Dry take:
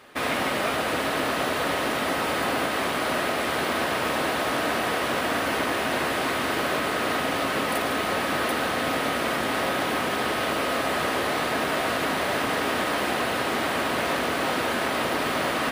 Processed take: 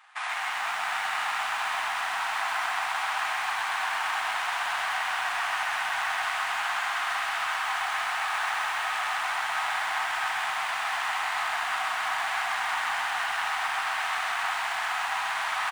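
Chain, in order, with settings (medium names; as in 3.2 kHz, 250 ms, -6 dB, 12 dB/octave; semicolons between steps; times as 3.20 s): median filter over 9 samples; elliptic high-pass 780 Hz, stop band 40 dB; in parallel at -6 dB: short-mantissa float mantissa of 2-bit; on the sum: delay 659 ms -5.5 dB; on a send at -13.5 dB: reverberation RT60 0.35 s, pre-delay 60 ms; on the sum: resampled via 22.05 kHz; bit-crushed delay 130 ms, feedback 80%, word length 7-bit, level -5 dB; trim -6 dB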